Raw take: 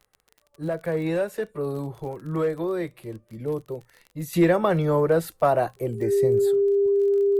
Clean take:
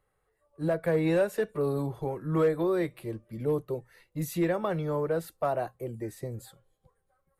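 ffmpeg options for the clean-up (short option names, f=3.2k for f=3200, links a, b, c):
-af "adeclick=t=4,bandreject=f=400:w=30,asetnsamples=n=441:p=0,asendcmd='4.33 volume volume -8.5dB',volume=0dB"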